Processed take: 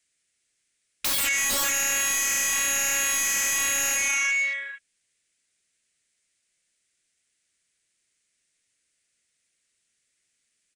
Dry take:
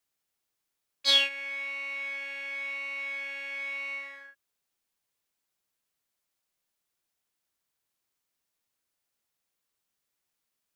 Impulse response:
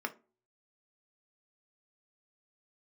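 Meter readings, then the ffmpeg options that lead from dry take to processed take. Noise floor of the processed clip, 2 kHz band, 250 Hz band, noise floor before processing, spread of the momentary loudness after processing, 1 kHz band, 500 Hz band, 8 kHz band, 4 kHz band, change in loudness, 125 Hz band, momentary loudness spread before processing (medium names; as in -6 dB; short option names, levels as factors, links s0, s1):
-75 dBFS, +7.5 dB, +12.5 dB, -83 dBFS, 4 LU, +11.5 dB, +5.0 dB, +27.5 dB, -1.5 dB, +7.5 dB, no reading, 13 LU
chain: -filter_complex "[0:a]aresample=22050,aresample=44100,asoftclip=type=hard:threshold=0.0531,afwtdn=0.00316,equalizer=f=1000:t=o:w=1:g=-12,equalizer=f=2000:t=o:w=1:g=9,equalizer=f=8000:t=o:w=1:g=9,asplit=2[s0][s1];[s1]aecho=0:1:448:0.224[s2];[s0][s2]amix=inputs=2:normalize=0,acrossover=split=1400|3500[s3][s4][s5];[s3]acompressor=threshold=0.00251:ratio=4[s6];[s4]acompressor=threshold=0.0158:ratio=4[s7];[s5]acompressor=threshold=0.01:ratio=4[s8];[s6][s7][s8]amix=inputs=3:normalize=0,bandreject=f=810:w=12,aeval=exprs='0.0841*sin(PI/2*7.94*val(0)/0.0841)':c=same"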